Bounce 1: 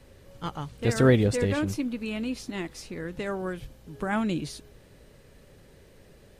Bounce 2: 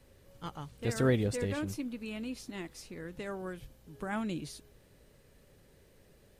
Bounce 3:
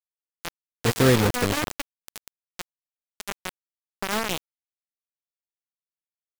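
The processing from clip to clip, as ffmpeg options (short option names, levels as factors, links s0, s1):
-af "highshelf=f=9800:g=7.5,volume=0.398"
-af "acrusher=bits=4:mix=0:aa=0.000001,volume=2.66"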